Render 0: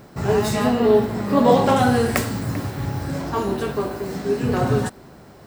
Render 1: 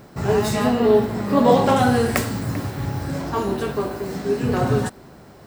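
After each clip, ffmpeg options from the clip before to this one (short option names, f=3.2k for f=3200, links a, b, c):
-af anull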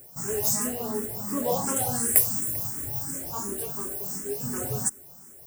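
-filter_complex "[0:a]aexciter=amount=14:drive=7:freq=5.9k,asplit=2[a][b];[b]afreqshift=2.8[c];[a][c]amix=inputs=2:normalize=1,volume=-10.5dB"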